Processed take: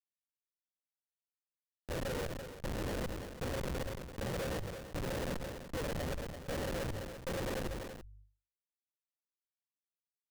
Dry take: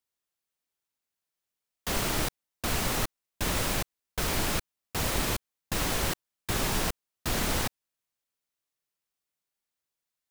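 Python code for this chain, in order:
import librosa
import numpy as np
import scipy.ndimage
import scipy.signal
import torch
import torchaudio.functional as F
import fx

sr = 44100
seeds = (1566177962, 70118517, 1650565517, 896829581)

p1 = fx.pitch_bins(x, sr, semitones=7.5)
p2 = scipy.signal.sosfilt(scipy.signal.butter(4, 69.0, 'highpass', fs=sr, output='sos'), p1)
p3 = fx.dynamic_eq(p2, sr, hz=820.0, q=2.3, threshold_db=-55.0, ratio=4.0, max_db=-5)
p4 = fx.formant_cascade(p3, sr, vowel='e')
p5 = fx.schmitt(p4, sr, flips_db=-46.5)
p6 = fx.hum_notches(p5, sr, base_hz=50, count=2)
p7 = p6 + fx.echo_single(p6, sr, ms=337, db=-18.5, dry=0)
p8 = fx.sustainer(p7, sr, db_per_s=39.0)
y = p8 * librosa.db_to_amplitude(17.0)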